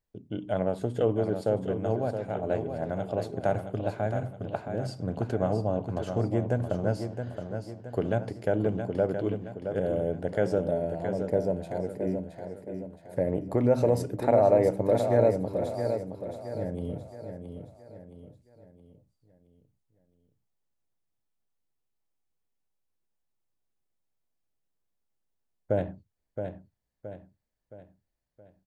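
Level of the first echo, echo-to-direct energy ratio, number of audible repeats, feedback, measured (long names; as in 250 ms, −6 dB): −7.5 dB, −6.5 dB, 4, 44%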